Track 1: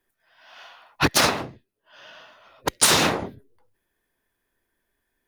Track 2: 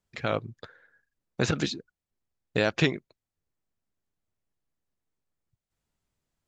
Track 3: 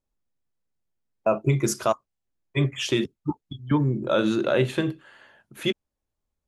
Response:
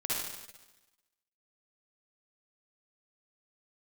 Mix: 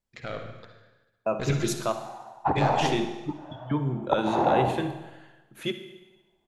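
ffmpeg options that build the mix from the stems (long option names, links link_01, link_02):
-filter_complex "[0:a]alimiter=limit=-16dB:level=0:latency=1:release=235,lowpass=frequency=800:width_type=q:width=4.9,adelay=1450,volume=-3dB,asplit=2[link_01][link_02];[link_02]volume=-10dB[link_03];[1:a]aeval=exprs='(tanh(5.62*val(0)+0.8)-tanh(0.8))/5.62':channel_layout=same,volume=-3.5dB,asplit=2[link_04][link_05];[link_05]volume=-7dB[link_06];[2:a]volume=-6.5dB,asplit=2[link_07][link_08];[link_08]volume=-13dB[link_09];[3:a]atrim=start_sample=2205[link_10];[link_03][link_06][link_09]amix=inputs=3:normalize=0[link_11];[link_11][link_10]afir=irnorm=-1:irlink=0[link_12];[link_01][link_04][link_07][link_12]amix=inputs=4:normalize=0"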